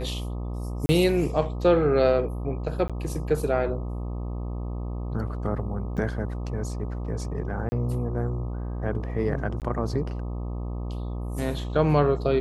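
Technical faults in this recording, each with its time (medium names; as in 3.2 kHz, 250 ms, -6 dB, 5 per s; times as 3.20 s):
buzz 60 Hz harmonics 21 -31 dBFS
0.86–0.89 s: dropout 30 ms
2.88–2.90 s: dropout 16 ms
5.97–5.98 s: dropout 6.9 ms
7.69–7.72 s: dropout 30 ms
9.60–9.62 s: dropout 18 ms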